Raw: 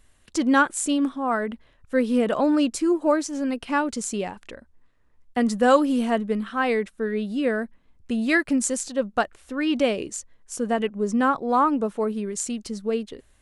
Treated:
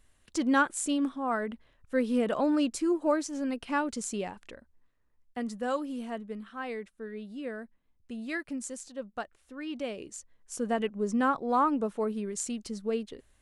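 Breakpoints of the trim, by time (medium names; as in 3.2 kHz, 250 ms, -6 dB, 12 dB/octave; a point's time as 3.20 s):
4.40 s -6 dB
5.65 s -14 dB
9.83 s -14 dB
10.56 s -5.5 dB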